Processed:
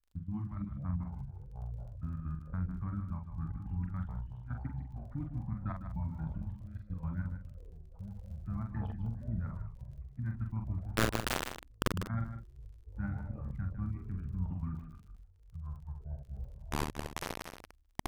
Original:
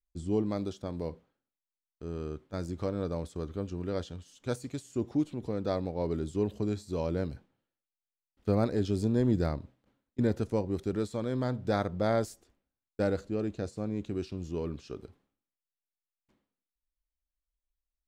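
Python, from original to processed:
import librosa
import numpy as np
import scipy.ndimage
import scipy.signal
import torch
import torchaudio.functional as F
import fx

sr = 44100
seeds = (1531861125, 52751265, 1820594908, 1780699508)

y = fx.spec_quant(x, sr, step_db=15)
y = scipy.signal.sosfilt(scipy.signal.butter(4, 1700.0, 'lowpass', fs=sr, output='sos'), y)
y = fx.dereverb_blind(y, sr, rt60_s=0.97)
y = scipy.signal.sosfilt(scipy.signal.cheby1(2, 1.0, [170.0, 1200.0], 'bandstop', fs=sr, output='sos'), y)
y = fx.low_shelf(y, sr, hz=190.0, db=7.5)
y = fx.level_steps(y, sr, step_db=22)
y = fx.step_gate(y, sr, bpm=160, pattern='xx.xx.x..', floor_db=-12.0, edge_ms=4.5)
y = fx.dmg_crackle(y, sr, seeds[0], per_s=11.0, level_db=-60.0)
y = fx.quant_companded(y, sr, bits=2, at=(10.91, 11.94))
y = fx.doubler(y, sr, ms=44.0, db=-5)
y = y + 10.0 ** (-9.5 / 20.0) * np.pad(y, (int(153 * sr / 1000.0), 0))[:len(y)]
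y = fx.echo_pitch(y, sr, ms=283, semitones=-7, count=3, db_per_echo=-6.0)
y = y * 10.0 ** (8.0 / 20.0)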